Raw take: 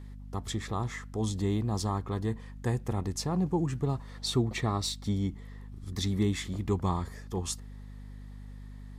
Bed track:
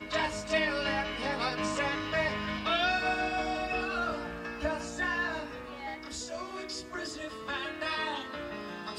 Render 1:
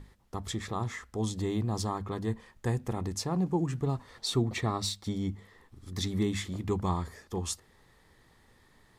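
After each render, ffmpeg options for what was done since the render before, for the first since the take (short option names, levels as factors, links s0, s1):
-af "bandreject=f=50:t=h:w=6,bandreject=f=100:t=h:w=6,bandreject=f=150:t=h:w=6,bandreject=f=200:t=h:w=6,bandreject=f=250:t=h:w=6"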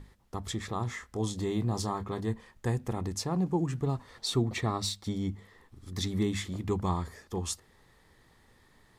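-filter_complex "[0:a]asettb=1/sr,asplit=3[s0][s1][s2];[s0]atrim=end=0.854[s3];[s1]atrim=start=0.85:end=2.21,asetpts=PTS-STARTPTS,afade=t=in:d=0.004:c=qsin,afade=t=out:st=1.356:d=0.004:c=qsin,asplit=2[s4][s5];[s5]adelay=25,volume=0.335[s6];[s4][s6]amix=inputs=2:normalize=0,atrim=end_sample=59976[s7];[s2]atrim=start=2.206[s8];[s3][s7]acrossfade=d=0.004:c1=hsin:c2=qsin[s9];[s9][s8]acrossfade=d=0.004:c1=qsin:c2=hsin"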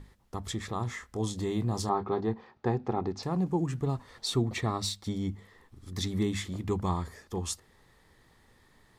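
-filter_complex "[0:a]asettb=1/sr,asplit=3[s0][s1][s2];[s0]atrim=end=1.894[s3];[s1]atrim=start=1.89:end=3.23,asetpts=PTS-STARTPTS,afade=t=in:d=0.004:c=qsin,afade=t=out:st=1.336:d=0.004:c=qsin,highpass=110,equalizer=f=250:t=q:w=4:g=3,equalizer=f=390:t=q:w=4:g=8,equalizer=f=790:t=q:w=4:g=10,equalizer=f=1300:t=q:w=4:g=4,equalizer=f=1900:t=q:w=4:g=-3,equalizer=f=3100:t=q:w=4:g=-5,lowpass=f=4600:w=0.5412,lowpass=f=4600:w=1.3066[s4];[s2]atrim=start=3.226[s5];[s3][s4]acrossfade=d=0.004:c1=hsin:c2=qsin[s6];[s6][s5]acrossfade=d=0.004:c1=qsin:c2=hsin"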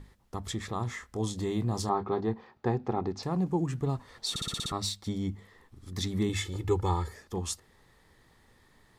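-filter_complex "[0:a]asettb=1/sr,asplit=3[s0][s1][s2];[s0]atrim=end=6.294[s3];[s1]atrim=start=6.29:end=7.13,asetpts=PTS-STARTPTS,afade=t=in:d=0.004:c=qsin,afade=t=out:st=0.836:d=0.004:c=qsin,aecho=1:1:2.3:0.87,atrim=end_sample=37044[s4];[s2]atrim=start=7.126[s5];[s3][s4]acrossfade=d=0.004:c1=hsin:c2=qsin[s6];[s6][s5]acrossfade=d=0.004:c1=qsin:c2=hsin,asplit=8[s7][s8][s9][s10][s11][s12][s13][s14];[s7]atrim=end=4.362[s15];[s8]atrim=start=4.298:end=4.362[s16];[s9]atrim=start=4.298:end=4.362[s17];[s10]atrim=start=4.298:end=4.362[s18];[s11]atrim=start=4.298:end=4.362[s19];[s12]atrim=start=4.298:end=4.362[s20];[s13]atrim=start=4.298:end=4.362[s21];[s14]atrim=start=4.718[s22];[s15][s16]acrossfade=d=0.004:c1=hsin:c2=hsin[s23];[s23][s17]acrossfade=d=0.004:c1=hsin:c2=hsin[s24];[s24][s18]acrossfade=d=0.004:c1=hsin:c2=hsin[s25];[s25][s19]acrossfade=d=0.004:c1=hsin:c2=hsin[s26];[s26][s20]acrossfade=d=0.004:c1=hsin:c2=hsin[s27];[s27][s21]acrossfade=d=0.004:c1=hsin:c2=hsin[s28];[s28][s22]acrossfade=d=0.004:c1=hsin:c2=hsin"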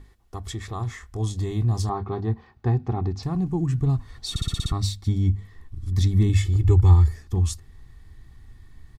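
-af "aecho=1:1:2.7:0.43,asubboost=boost=10:cutoff=150"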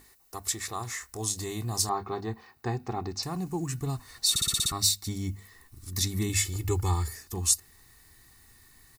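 -af "aemphasis=mode=production:type=riaa,bandreject=f=3300:w=7.8"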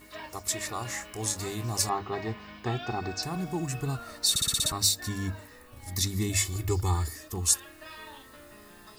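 -filter_complex "[1:a]volume=0.251[s0];[0:a][s0]amix=inputs=2:normalize=0"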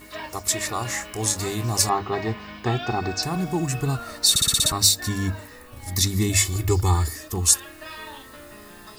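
-af "volume=2.24,alimiter=limit=0.891:level=0:latency=1"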